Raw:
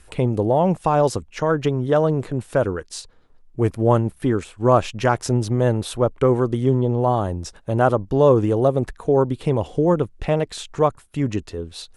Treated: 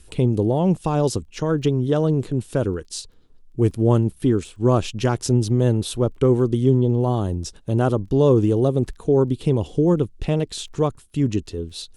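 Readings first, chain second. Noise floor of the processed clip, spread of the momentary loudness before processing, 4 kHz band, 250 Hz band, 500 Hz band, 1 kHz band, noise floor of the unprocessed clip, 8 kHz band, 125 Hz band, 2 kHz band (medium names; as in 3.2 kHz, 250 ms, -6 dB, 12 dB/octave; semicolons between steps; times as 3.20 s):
-50 dBFS, 8 LU, +1.5 dB, +2.0 dB, -2.0 dB, -7.0 dB, -52 dBFS, +2.0 dB, +2.0 dB, -6.0 dB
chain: high-order bell 1.1 kHz -9 dB 2.4 oct; crackle 12 per s -48 dBFS; trim +2 dB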